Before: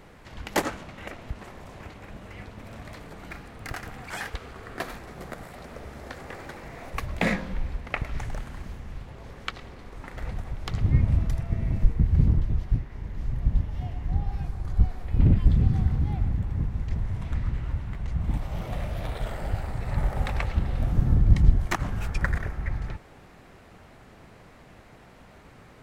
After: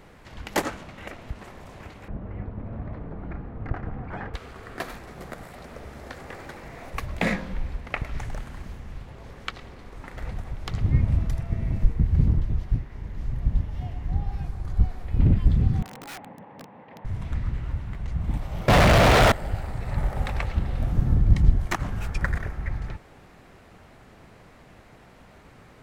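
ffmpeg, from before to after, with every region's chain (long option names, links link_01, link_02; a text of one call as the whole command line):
ffmpeg -i in.wav -filter_complex "[0:a]asettb=1/sr,asplit=3[link_01][link_02][link_03];[link_01]atrim=end=2.084[link_04];[link_02]atrim=start=2.08:end=4.34,asetpts=PTS-STARTPTS,afade=type=in:duration=0.004:curve=qsin,afade=type=out:start_time=2.256:duration=0.004:curve=qsin,lowpass=1300,lowshelf=frequency=390:gain=9.5[link_05];[link_03]atrim=start=4.336[link_06];[link_04][link_05]acrossfade=duration=0.004:curve1=hsin:curve2=qsin[link_07];[link_07][link_06]acrossfade=duration=0.004:curve1=qsin:curve2=hsin,asettb=1/sr,asplit=3[link_08][link_09][link_10];[link_08]atrim=end=15.824[link_11];[link_09]atrim=start=15.82:end=17.05,asetpts=PTS-STARTPTS,afade=type=in:duration=0.004:curve=qsin,afade=type=out:start_time=1.226:duration=0.004:curve=qsin,highpass=frequency=240:width=0.5412,highpass=frequency=240:width=1.3066,equalizer=frequency=240:width_type=q:width=4:gain=-4,equalizer=frequency=360:width_type=q:width=4:gain=-8,equalizer=frequency=520:width_type=q:width=4:gain=6,equalizer=frequency=880:width_type=q:width=4:gain=8,equalizer=frequency=1400:width_type=q:width=4:gain=-6,equalizer=frequency=2300:width_type=q:width=4:gain=-3,lowpass=frequency=2600:width=0.5412,lowpass=frequency=2600:width=1.3066,aeval=exprs='(mod(50.1*val(0)+1,2)-1)/50.1':channel_layout=same[link_12];[link_10]atrim=start=17.046[link_13];[link_11][link_12]acrossfade=duration=0.004:curve1=hsin:curve2=qsin[link_14];[link_14][link_13]acrossfade=duration=0.004:curve1=qsin:curve2=hsin,asettb=1/sr,asplit=3[link_15][link_16][link_17];[link_15]atrim=end=18.684[link_18];[link_16]atrim=start=18.68:end=19.32,asetpts=PTS-STARTPTS,afade=type=in:duration=0.004:curve=qsin,afade=type=out:start_time=0.636:duration=0.004:curve=qsin,lowshelf=frequency=330:gain=10.5,asplit=2[link_19][link_20];[link_20]highpass=frequency=720:poles=1,volume=50dB,asoftclip=type=tanh:threshold=-9dB[link_21];[link_19][link_21]amix=inputs=2:normalize=0,lowpass=frequency=2800:poles=1,volume=-6dB[link_22];[link_17]atrim=start=19.316[link_23];[link_18][link_22]acrossfade=duration=0.004:curve1=hsin:curve2=qsin[link_24];[link_24][link_23]acrossfade=duration=0.004:curve1=qsin:curve2=hsin" out.wav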